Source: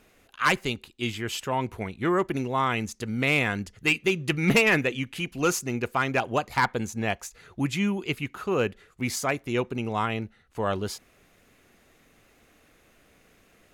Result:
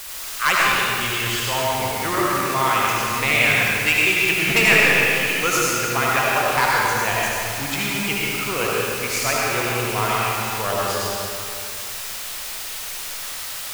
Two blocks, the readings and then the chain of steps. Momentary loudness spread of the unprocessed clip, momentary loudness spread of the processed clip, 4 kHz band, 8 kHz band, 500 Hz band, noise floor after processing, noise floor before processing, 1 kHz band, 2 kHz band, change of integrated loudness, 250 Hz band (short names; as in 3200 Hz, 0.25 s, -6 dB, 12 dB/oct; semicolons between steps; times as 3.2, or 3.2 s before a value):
9 LU, 12 LU, +11.0 dB, +13.0 dB, +4.0 dB, -31 dBFS, -61 dBFS, +8.5 dB, +10.0 dB, +7.5 dB, -0.5 dB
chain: added noise white -39 dBFS; bell 230 Hz -12.5 dB 2.2 oct; digital reverb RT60 2.6 s, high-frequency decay 0.8×, pre-delay 40 ms, DRR -5.5 dB; gain +4 dB